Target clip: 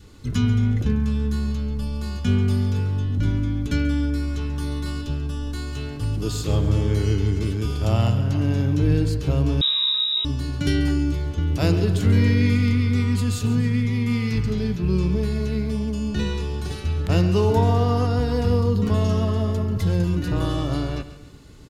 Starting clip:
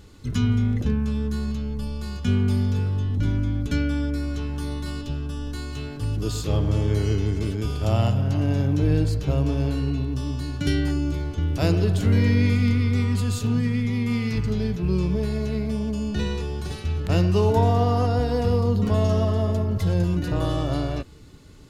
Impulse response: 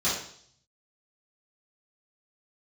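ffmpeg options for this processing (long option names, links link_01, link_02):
-filter_complex "[0:a]adynamicequalizer=threshold=0.00708:dfrequency=660:dqfactor=2.1:tfrequency=660:tqfactor=2.1:attack=5:release=100:ratio=0.375:range=3:mode=cutabove:tftype=bell,asplit=2[link_01][link_02];[link_02]aecho=0:1:138|276|414|552:0.2|0.0818|0.0335|0.0138[link_03];[link_01][link_03]amix=inputs=2:normalize=0,asettb=1/sr,asplit=3[link_04][link_05][link_06];[link_04]atrim=end=9.614[link_07];[link_05]atrim=start=9.61:end=10.25,asetpts=PTS-STARTPTS,afade=type=in:duration=0.004:curve=qsin,afade=type=out:start_time=0.636:duration=0.004:curve=qsin,lowpass=frequency=3300:width_type=q:width=0.5098,lowpass=frequency=3300:width_type=q:width=0.6013,lowpass=frequency=3300:width_type=q:width=0.9,lowpass=frequency=3300:width_type=q:width=2.563,afreqshift=-3900[link_08];[link_06]atrim=start=10.246[link_09];[link_07][link_08]acrossfade=duration=0.004:curve1=hsin:curve2=qsin[link_10];[link_10][link_09]acrossfade=duration=0.004:curve1=qsin:curve2=hsin,volume=1.5dB"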